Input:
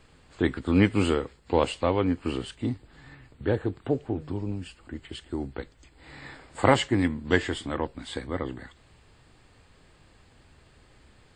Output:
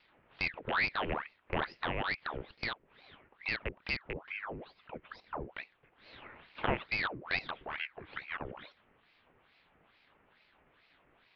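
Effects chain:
loose part that buzzes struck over −29 dBFS, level −10 dBFS
single-sideband voice off tune −140 Hz 180–2,500 Hz
in parallel at −1 dB: downward compressor, threshold −33 dBFS, peak gain reduction 17.5 dB
on the sum: dynamic equaliser 1,400 Hz, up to −6 dB, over −38 dBFS, Q 0.87
ring modulator whose carrier an LFO sweeps 1,300 Hz, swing 85%, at 2.3 Hz
level −8.5 dB

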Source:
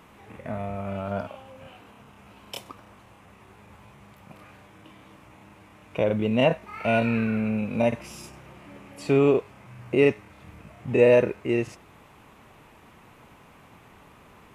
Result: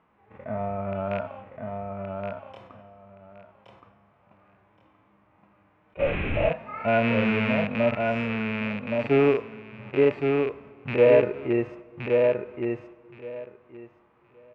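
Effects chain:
loose part that buzzes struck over −29 dBFS, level −12 dBFS
noise gate −44 dBFS, range −12 dB
low-pass filter 1,700 Hz 12 dB per octave
low-shelf EQ 330 Hz −7 dB
in parallel at 0 dB: brickwall limiter −20.5 dBFS, peak gain reduction 11 dB
on the sum: repeating echo 1,121 ms, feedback 16%, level −4 dB
on a send at −21.5 dB: convolution reverb RT60 1.8 s, pre-delay 80 ms
0:05.97–0:06.50: on the sum: linear-prediction vocoder at 8 kHz whisper
harmonic and percussive parts rebalanced percussive −14 dB
level that may rise only so fast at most 490 dB per second

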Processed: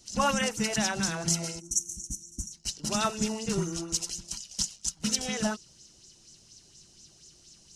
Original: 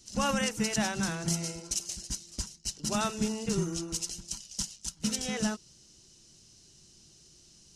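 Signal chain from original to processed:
gain on a spectral selection 0:01.60–0:02.52, 350–5,500 Hz −23 dB
auto-filter bell 4.2 Hz 600–7,300 Hz +9 dB

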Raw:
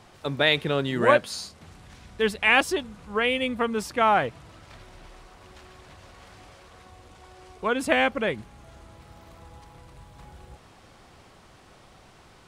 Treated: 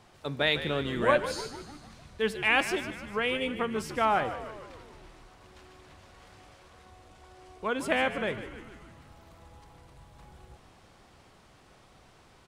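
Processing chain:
tuned comb filter 74 Hz, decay 0.9 s, harmonics all, mix 40%
on a send: echo with shifted repeats 150 ms, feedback 59%, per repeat −74 Hz, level −12 dB
on the sum: level −1.5 dB

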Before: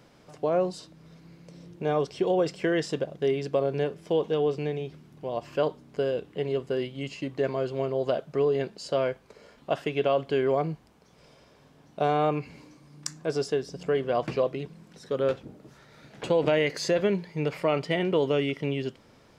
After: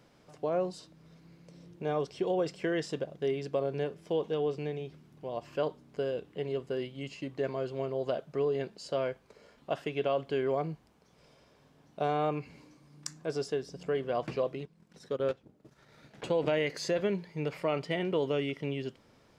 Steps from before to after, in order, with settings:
0:14.60–0:16.26: transient designer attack +1 dB, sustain −11 dB
level −5.5 dB

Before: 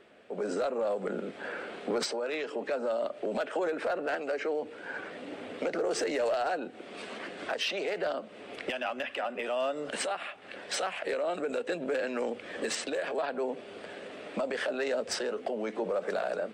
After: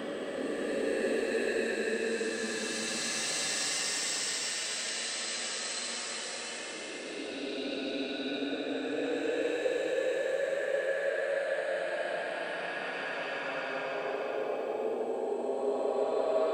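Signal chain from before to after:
surface crackle 16 per second −44 dBFS
extreme stretch with random phases 28×, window 0.10 s, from 0:12.60

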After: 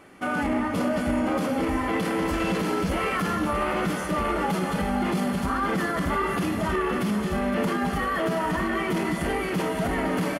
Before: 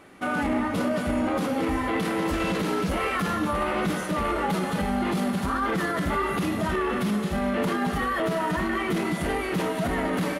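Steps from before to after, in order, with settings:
notch filter 3,800 Hz, Q 10
single-tap delay 515 ms −11 dB

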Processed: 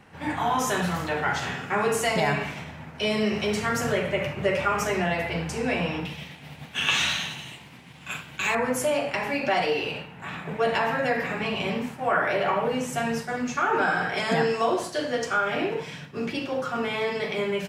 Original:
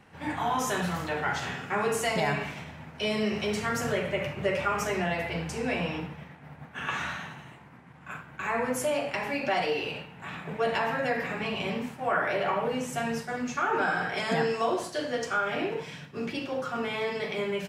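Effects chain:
0:06.05–0:08.55: high shelf with overshoot 2,200 Hz +12.5 dB, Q 1.5
level +3.5 dB

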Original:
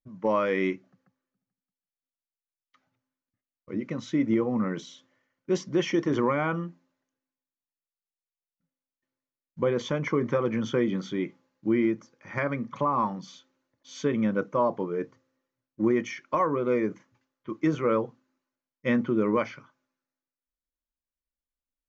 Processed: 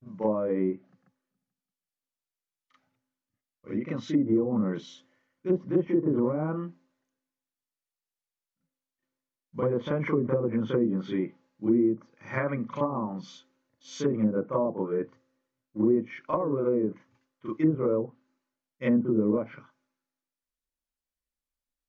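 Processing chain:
backwards echo 38 ms −7 dB
treble cut that deepens with the level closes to 530 Hz, closed at −20.5 dBFS

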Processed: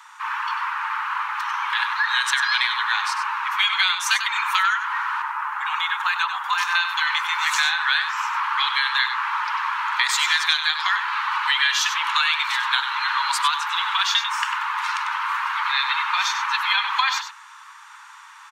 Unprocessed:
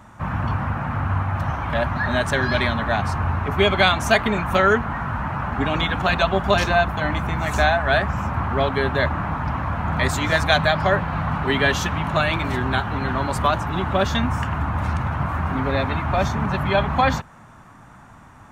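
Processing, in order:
Butterworth high-pass 880 Hz 96 dB per octave
parametric band 4,100 Hz +7.5 dB 1.8 octaves, from 0:05.22 −4.5 dB, from 0:06.75 +10.5 dB
downward compressor 6 to 1, threshold −20 dBFS, peak gain reduction 12 dB
single-tap delay 96 ms −9 dB
level +3 dB

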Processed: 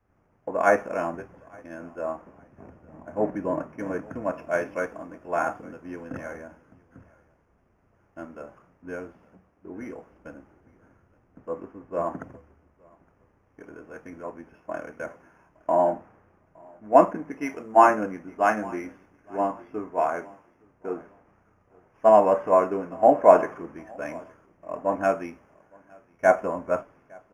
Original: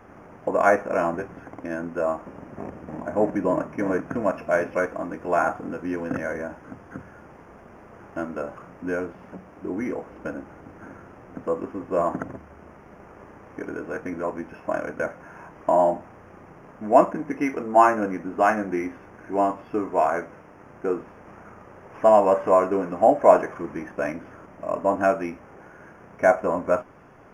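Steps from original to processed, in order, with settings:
repeating echo 865 ms, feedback 32%, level −17 dB
multiband upward and downward expander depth 70%
level −6 dB

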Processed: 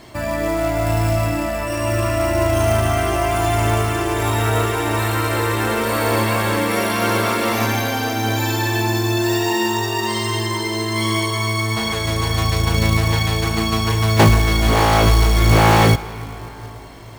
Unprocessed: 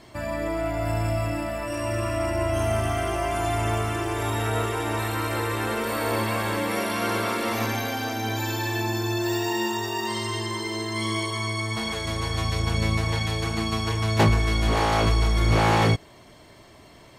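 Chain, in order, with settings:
comb and all-pass reverb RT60 4.7 s, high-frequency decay 0.4×, pre-delay 110 ms, DRR 14.5 dB
floating-point word with a short mantissa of 2 bits
level +7 dB

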